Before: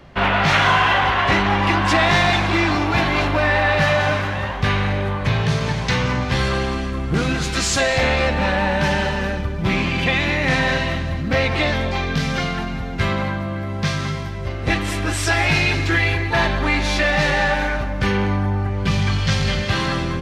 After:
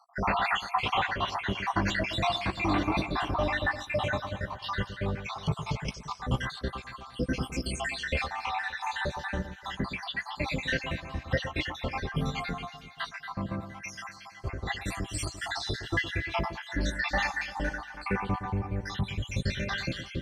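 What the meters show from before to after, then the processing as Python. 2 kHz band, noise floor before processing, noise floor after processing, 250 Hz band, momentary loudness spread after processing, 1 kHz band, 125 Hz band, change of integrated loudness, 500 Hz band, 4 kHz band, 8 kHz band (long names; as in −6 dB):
−13.0 dB, −26 dBFS, −48 dBFS, −12.0 dB, 9 LU, −11.5 dB, −13.5 dB, −12.5 dB, −13.5 dB, −12.0 dB, −13.5 dB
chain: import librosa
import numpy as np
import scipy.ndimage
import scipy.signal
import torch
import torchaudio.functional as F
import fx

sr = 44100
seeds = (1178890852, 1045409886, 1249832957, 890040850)

y = fx.spec_dropout(x, sr, seeds[0], share_pct=76)
y = fx.doubler(y, sr, ms=16.0, db=-12)
y = fx.echo_alternate(y, sr, ms=115, hz=1400.0, feedback_pct=68, wet_db=-10.5)
y = y * 10.0 ** (-6.5 / 20.0)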